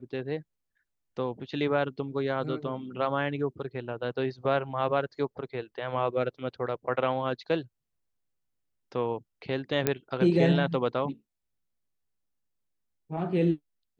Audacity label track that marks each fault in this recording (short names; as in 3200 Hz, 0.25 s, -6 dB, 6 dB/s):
9.870000	9.870000	pop -9 dBFS